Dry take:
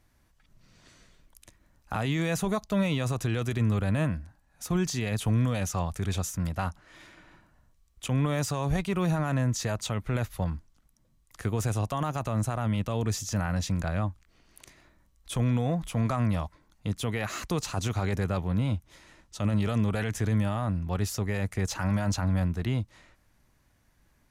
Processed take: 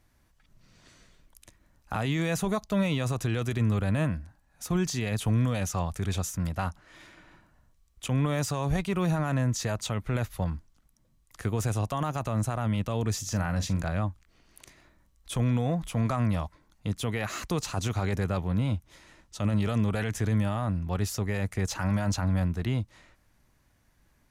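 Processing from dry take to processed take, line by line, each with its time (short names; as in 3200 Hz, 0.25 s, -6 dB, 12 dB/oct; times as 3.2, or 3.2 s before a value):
13.19–13.92 doubler 42 ms -12.5 dB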